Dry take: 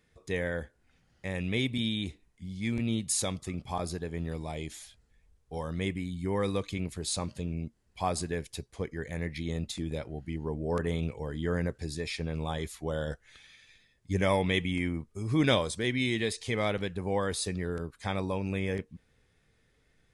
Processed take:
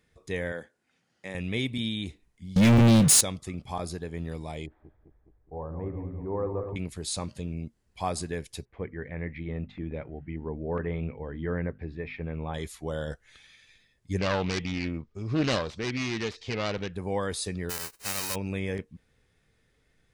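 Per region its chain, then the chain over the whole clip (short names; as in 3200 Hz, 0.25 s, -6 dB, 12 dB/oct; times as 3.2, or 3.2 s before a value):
0.52–1.35 Chebyshev band-pass 190–9600 Hz + low shelf 360 Hz -4.5 dB
2.56–3.21 bell 150 Hz +11.5 dB 0.76 oct + sample leveller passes 5
4.66–6.76 regenerating reverse delay 0.104 s, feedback 77%, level -8 dB + LPF 1100 Hz 24 dB/oct + bell 200 Hz -8.5 dB 0.64 oct
8.65–12.54 Chebyshev low-pass 2300 Hz, order 3 + notches 50/100/150/200/250 Hz
14.18–16.94 self-modulated delay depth 0.44 ms + LPF 5700 Hz 24 dB/oct
17.69–18.34 spectral whitening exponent 0.1 + notch 3400 Hz, Q 5.6
whole clip: dry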